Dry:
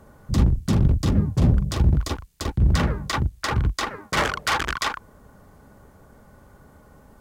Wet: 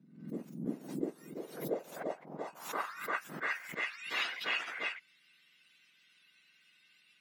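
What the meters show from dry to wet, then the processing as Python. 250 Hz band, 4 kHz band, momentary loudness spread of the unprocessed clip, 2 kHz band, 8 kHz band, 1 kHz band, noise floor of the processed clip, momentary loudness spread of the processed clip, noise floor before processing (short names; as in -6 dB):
-16.0 dB, -11.0 dB, 8 LU, -7.5 dB, -17.5 dB, -13.5 dB, -68 dBFS, 10 LU, -52 dBFS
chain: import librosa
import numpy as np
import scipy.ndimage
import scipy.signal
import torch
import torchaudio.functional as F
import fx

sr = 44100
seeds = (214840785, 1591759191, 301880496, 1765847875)

y = fx.octave_mirror(x, sr, pivot_hz=1500.0)
y = fx.filter_sweep_bandpass(y, sr, from_hz=230.0, to_hz=2800.0, start_s=0.61, end_s=4.12, q=2.5)
y = fx.pre_swell(y, sr, db_per_s=95.0)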